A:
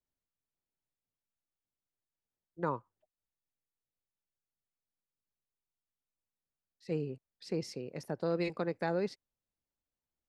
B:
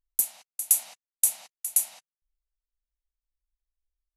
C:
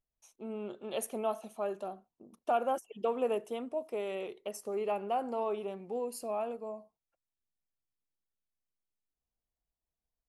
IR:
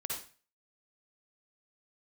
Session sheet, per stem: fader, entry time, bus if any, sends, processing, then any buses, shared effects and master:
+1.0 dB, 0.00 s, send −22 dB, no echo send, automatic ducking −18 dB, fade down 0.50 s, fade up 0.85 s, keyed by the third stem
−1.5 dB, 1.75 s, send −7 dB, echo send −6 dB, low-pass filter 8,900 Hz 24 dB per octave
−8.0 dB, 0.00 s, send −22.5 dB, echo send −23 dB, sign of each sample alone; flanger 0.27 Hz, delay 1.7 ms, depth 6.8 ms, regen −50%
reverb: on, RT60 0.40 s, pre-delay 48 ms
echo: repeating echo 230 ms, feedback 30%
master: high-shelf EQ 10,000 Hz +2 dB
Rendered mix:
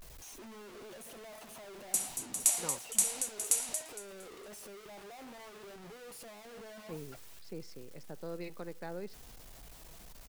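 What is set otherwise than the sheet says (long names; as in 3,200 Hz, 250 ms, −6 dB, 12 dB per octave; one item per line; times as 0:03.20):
stem A +1.0 dB → −10.0 dB
master: missing high-shelf EQ 10,000 Hz +2 dB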